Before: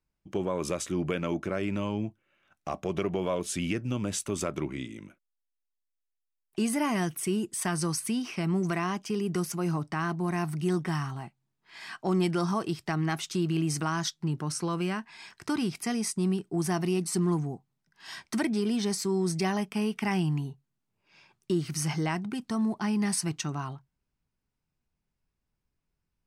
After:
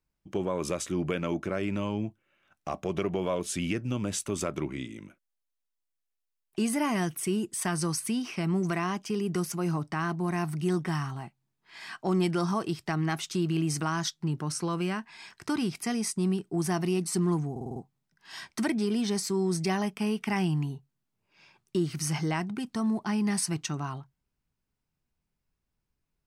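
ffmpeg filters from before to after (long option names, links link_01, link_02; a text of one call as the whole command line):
ffmpeg -i in.wav -filter_complex "[0:a]asplit=6[link_01][link_02][link_03][link_04][link_05][link_06];[link_01]atrim=end=17.562[link_07];[link_02]atrim=start=17.508:end=17.562[link_08];[link_03]atrim=start=17.508:end=17.562[link_09];[link_04]atrim=start=17.508:end=17.562[link_10];[link_05]atrim=start=17.508:end=17.562[link_11];[link_06]atrim=start=17.508[link_12];[link_07][link_08]acrossfade=duration=0.004:curve1=hsin:curve2=hsin[link_13];[link_13][link_09]acrossfade=duration=0.004:curve1=hsin:curve2=hsin[link_14];[link_14][link_10]acrossfade=duration=0.004:curve1=hsin:curve2=hsin[link_15];[link_15][link_11]acrossfade=duration=0.004:curve1=hsin:curve2=hsin[link_16];[link_16][link_12]acrossfade=duration=0.004:curve1=hsin:curve2=hsin" out.wav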